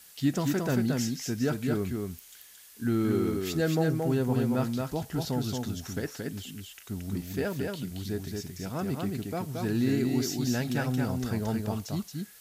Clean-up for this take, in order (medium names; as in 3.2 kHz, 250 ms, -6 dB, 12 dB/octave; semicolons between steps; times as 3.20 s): noise print and reduce 28 dB; inverse comb 225 ms -3.5 dB